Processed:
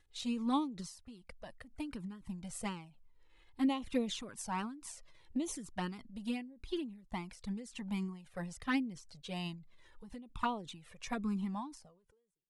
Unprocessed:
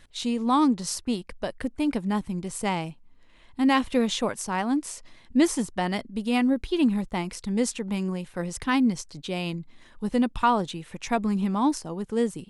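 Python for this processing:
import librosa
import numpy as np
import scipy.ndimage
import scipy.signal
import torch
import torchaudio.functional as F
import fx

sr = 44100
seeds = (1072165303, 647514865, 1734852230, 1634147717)

y = fx.fade_out_tail(x, sr, length_s=1.5)
y = fx.env_flanger(y, sr, rest_ms=2.5, full_db=-17.5)
y = fx.end_taper(y, sr, db_per_s=100.0)
y = F.gain(torch.from_numpy(y), -6.5).numpy()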